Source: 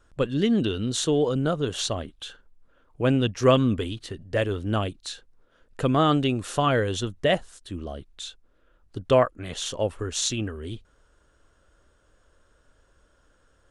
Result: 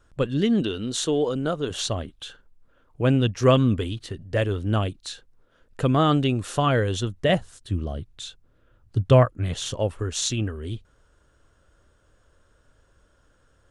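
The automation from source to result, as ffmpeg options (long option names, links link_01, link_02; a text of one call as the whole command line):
ffmpeg -i in.wav -af "asetnsamples=nb_out_samples=441:pad=0,asendcmd='0.61 equalizer g -5.5;1.7 equalizer g 4.5;7.29 equalizer g 14.5;9.74 equalizer g 5.5',equalizer=frequency=110:width_type=o:width=1.3:gain=3.5" out.wav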